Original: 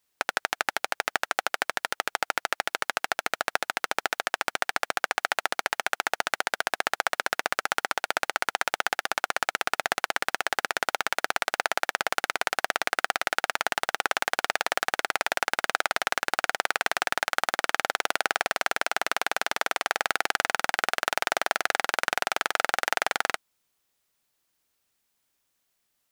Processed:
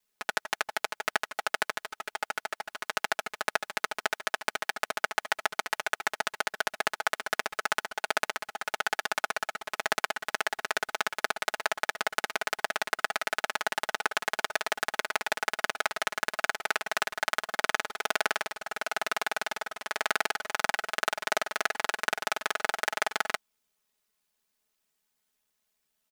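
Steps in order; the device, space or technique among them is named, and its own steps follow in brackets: ring-modulated robot voice (ring modulator 40 Hz; comb 4.7 ms, depth 90%); trim -3 dB

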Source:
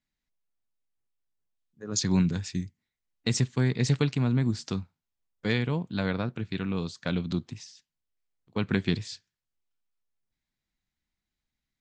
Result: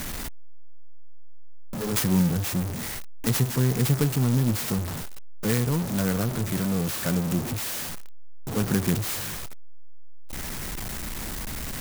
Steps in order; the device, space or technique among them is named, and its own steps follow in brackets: early CD player with a faulty converter (jump at every zero crossing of -25 dBFS; sampling jitter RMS 0.096 ms)

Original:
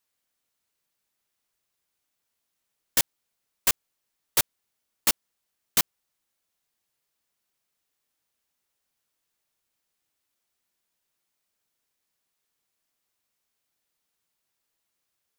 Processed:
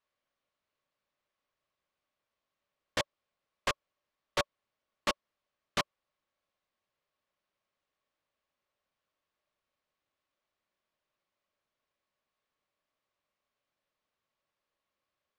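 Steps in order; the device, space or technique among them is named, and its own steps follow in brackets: inside a cardboard box (low-pass 3.3 kHz 12 dB/octave; small resonant body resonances 580/1100 Hz, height 10 dB, ringing for 40 ms); trim -2 dB

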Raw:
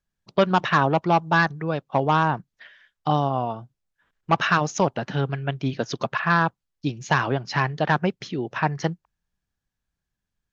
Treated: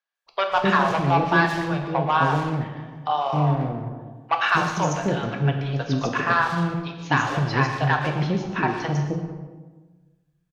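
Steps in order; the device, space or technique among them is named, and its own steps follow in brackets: three bands offset in time mids, highs, lows 150/260 ms, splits 550/5300 Hz; saturated reverb return (on a send at -4.5 dB: reverberation RT60 1.3 s, pre-delay 109 ms + saturation -26.5 dBFS, distortion -7 dB); on the sum: gated-style reverb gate 250 ms falling, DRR 4 dB

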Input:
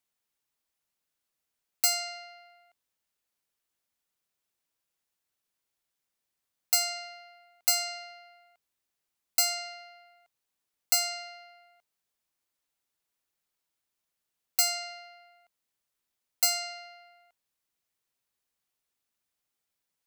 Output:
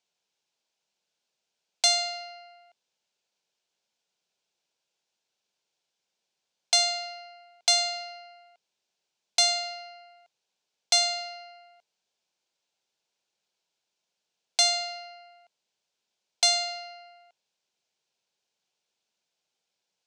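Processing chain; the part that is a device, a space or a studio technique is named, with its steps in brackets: full-range speaker at full volume (loudspeaker Doppler distortion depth 0.16 ms; cabinet simulation 200–6600 Hz, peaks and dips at 280 Hz -10 dB, 1.2 kHz -10 dB, 1.9 kHz -9 dB); trim +7.5 dB

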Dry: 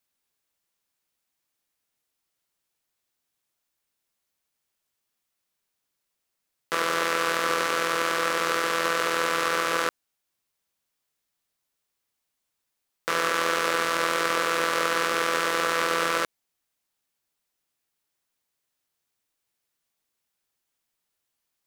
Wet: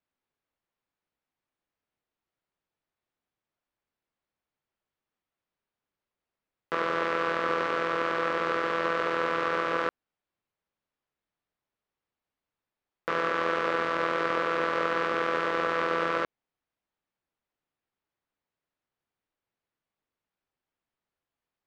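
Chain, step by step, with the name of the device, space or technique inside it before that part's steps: phone in a pocket (low-pass 3.8 kHz 12 dB/octave; treble shelf 2.2 kHz -11 dB)

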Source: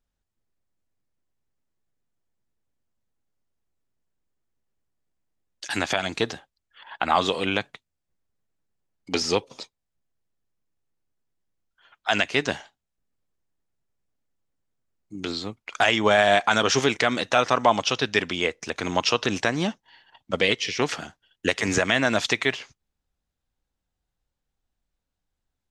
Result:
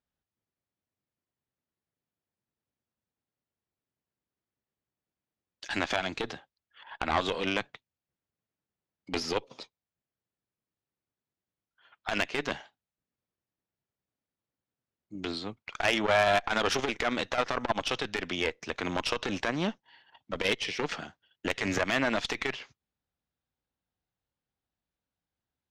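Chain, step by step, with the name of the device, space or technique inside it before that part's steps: valve radio (band-pass 83–4600 Hz; valve stage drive 15 dB, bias 0.7; transformer saturation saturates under 550 Hz)

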